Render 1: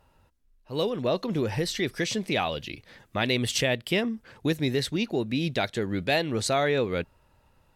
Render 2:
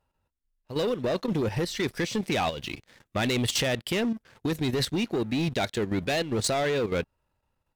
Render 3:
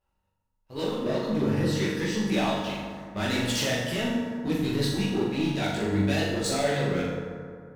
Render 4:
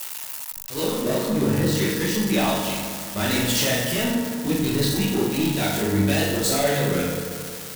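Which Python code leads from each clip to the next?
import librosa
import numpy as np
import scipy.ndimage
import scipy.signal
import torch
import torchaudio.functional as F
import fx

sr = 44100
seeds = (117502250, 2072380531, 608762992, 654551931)

y1 = fx.leveller(x, sr, passes=3)
y1 = fx.level_steps(y1, sr, step_db=10)
y1 = y1 * librosa.db_to_amplitude(-5.5)
y2 = fx.chorus_voices(y1, sr, voices=4, hz=0.85, base_ms=18, depth_ms=4.8, mix_pct=55)
y2 = fx.room_flutter(y2, sr, wall_m=7.1, rt60_s=0.57)
y2 = fx.rev_fdn(y2, sr, rt60_s=2.3, lf_ratio=1.0, hf_ratio=0.4, size_ms=31.0, drr_db=0.0)
y2 = y2 * librosa.db_to_amplitude(-1.5)
y3 = y2 + 0.5 * 10.0 ** (-23.5 / 20.0) * np.diff(np.sign(y2), prepend=np.sign(y2[:1]))
y3 = y3 * librosa.db_to_amplitude(4.0)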